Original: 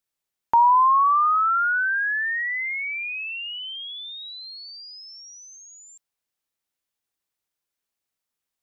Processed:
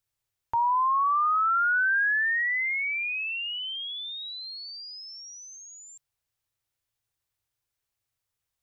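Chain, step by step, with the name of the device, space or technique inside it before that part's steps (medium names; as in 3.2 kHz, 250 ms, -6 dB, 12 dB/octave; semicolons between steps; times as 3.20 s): car stereo with a boomy subwoofer (resonant low shelf 150 Hz +8.5 dB, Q 3; peak limiter -20.5 dBFS, peak gain reduction 10 dB)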